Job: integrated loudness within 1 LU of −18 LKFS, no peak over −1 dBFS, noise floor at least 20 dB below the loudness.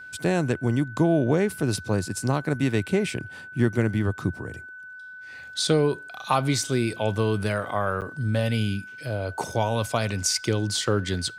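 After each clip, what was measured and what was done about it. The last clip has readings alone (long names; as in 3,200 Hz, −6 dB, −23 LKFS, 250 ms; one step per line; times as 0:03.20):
number of dropouts 1; longest dropout 8.4 ms; interfering tone 1,500 Hz; level of the tone −39 dBFS; integrated loudness −25.5 LKFS; sample peak −8.5 dBFS; target loudness −18.0 LKFS
→ repair the gap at 0:08.01, 8.4 ms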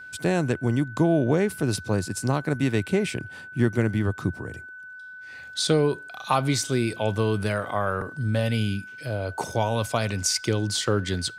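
number of dropouts 0; interfering tone 1,500 Hz; level of the tone −39 dBFS
→ notch filter 1,500 Hz, Q 30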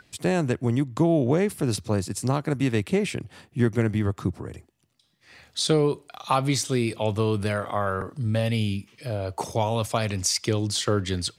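interfering tone none found; integrated loudness −25.5 LKFS; sample peak −9.0 dBFS; target loudness −18.0 LKFS
→ level +7.5 dB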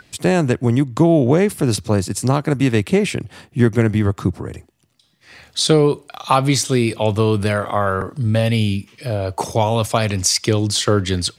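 integrated loudness −18.0 LKFS; sample peak −1.5 dBFS; background noise floor −56 dBFS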